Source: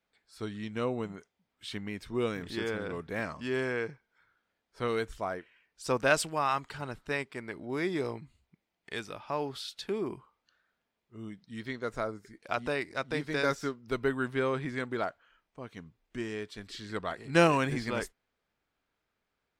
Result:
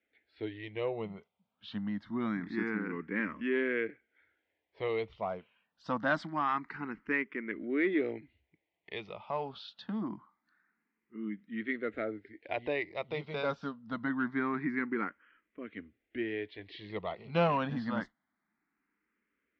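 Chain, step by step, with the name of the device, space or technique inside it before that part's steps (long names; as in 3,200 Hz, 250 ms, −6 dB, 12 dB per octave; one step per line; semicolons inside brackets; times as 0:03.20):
barber-pole phaser into a guitar amplifier (frequency shifter mixed with the dry sound +0.25 Hz; soft clipping −21 dBFS, distortion −19 dB; loudspeaker in its box 78–3,400 Hz, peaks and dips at 130 Hz −7 dB, 210 Hz +7 dB, 300 Hz +7 dB, 2,000 Hz +7 dB)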